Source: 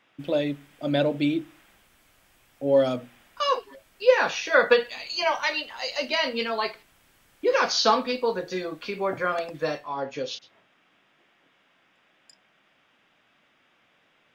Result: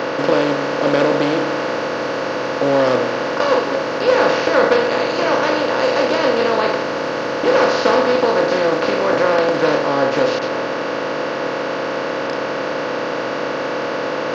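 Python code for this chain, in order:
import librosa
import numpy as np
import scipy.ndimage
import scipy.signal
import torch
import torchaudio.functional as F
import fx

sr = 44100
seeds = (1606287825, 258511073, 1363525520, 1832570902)

y = fx.bin_compress(x, sr, power=0.2)
y = fx.tilt_shelf(y, sr, db=4.5, hz=1400.0)
y = fx.doppler_dist(y, sr, depth_ms=0.16)
y = F.gain(torch.from_numpy(y), -4.5).numpy()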